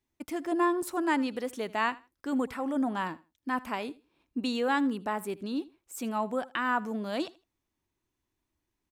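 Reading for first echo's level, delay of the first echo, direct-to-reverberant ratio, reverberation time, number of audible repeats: −20.5 dB, 79 ms, no reverb audible, no reverb audible, 2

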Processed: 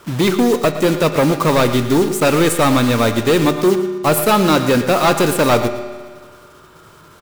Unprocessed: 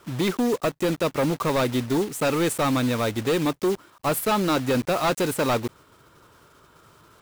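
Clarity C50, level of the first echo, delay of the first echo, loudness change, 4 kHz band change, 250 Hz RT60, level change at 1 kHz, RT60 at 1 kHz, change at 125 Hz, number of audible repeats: 8.5 dB, −13.0 dB, 115 ms, +9.0 dB, +9.0 dB, 1.6 s, +9.0 dB, 1.6 s, +9.0 dB, 1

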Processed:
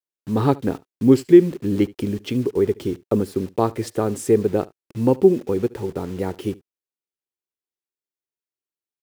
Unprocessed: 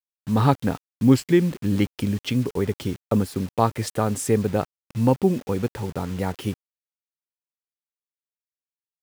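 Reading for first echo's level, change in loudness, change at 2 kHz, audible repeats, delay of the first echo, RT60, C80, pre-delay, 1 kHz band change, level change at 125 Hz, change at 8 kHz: −22.5 dB, +3.0 dB, −3.0 dB, 1, 73 ms, no reverb audible, no reverb audible, no reverb audible, −2.0 dB, −2.5 dB, −3.5 dB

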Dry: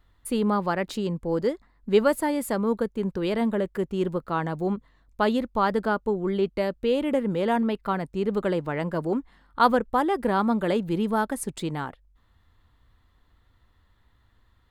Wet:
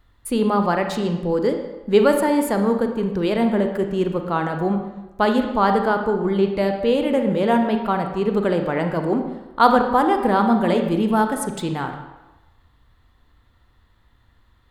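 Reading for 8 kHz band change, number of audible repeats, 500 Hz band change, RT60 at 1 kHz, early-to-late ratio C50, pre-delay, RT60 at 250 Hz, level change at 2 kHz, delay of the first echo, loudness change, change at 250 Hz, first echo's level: can't be measured, no echo audible, +5.5 dB, 1.1 s, 6.5 dB, 32 ms, 1.0 s, +5.0 dB, no echo audible, +5.5 dB, +6.0 dB, no echo audible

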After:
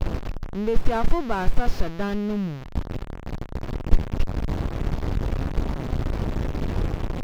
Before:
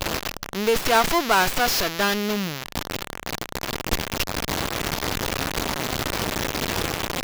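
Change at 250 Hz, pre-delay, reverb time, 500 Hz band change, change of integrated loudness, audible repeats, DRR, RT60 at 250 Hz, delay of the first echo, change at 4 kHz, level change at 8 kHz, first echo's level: +0.5 dB, no reverb audible, no reverb audible, −4.5 dB, −4.5 dB, no echo audible, no reverb audible, no reverb audible, no echo audible, −17.5 dB, −21.5 dB, no echo audible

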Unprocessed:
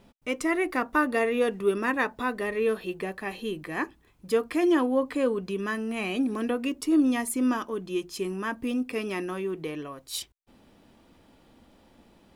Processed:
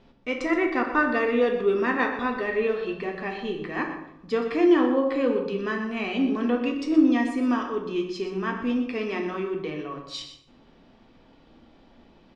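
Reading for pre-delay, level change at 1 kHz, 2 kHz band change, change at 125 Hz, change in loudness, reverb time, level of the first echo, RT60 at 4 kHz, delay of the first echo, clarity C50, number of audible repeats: 3 ms, +2.5 dB, +2.5 dB, +1.5 dB, +3.0 dB, 0.80 s, −11.5 dB, 0.45 s, 123 ms, 5.5 dB, 1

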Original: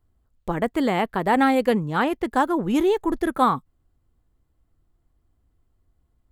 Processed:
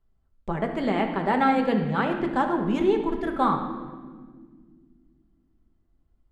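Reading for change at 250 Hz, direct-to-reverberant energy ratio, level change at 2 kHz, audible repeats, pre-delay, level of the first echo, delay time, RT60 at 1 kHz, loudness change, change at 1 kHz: −2.0 dB, 3.0 dB, −3.0 dB, no echo audible, 5 ms, no echo audible, no echo audible, 1.4 s, −2.5 dB, −2.5 dB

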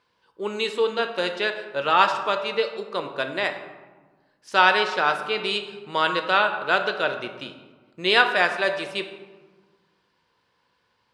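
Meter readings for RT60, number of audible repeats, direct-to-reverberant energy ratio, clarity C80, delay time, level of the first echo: 1.4 s, no echo audible, 5.5 dB, 10.0 dB, no echo audible, no echo audible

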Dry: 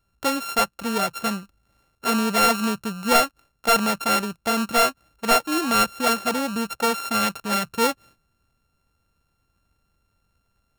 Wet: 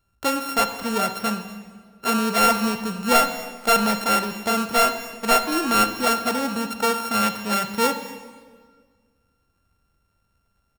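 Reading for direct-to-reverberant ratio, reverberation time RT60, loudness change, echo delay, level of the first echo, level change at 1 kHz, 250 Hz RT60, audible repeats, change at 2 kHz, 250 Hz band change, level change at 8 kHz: 8.5 dB, 1.7 s, +0.5 dB, 242 ms, −21.0 dB, +1.0 dB, 1.9 s, 1, +0.5 dB, +0.5 dB, 0.0 dB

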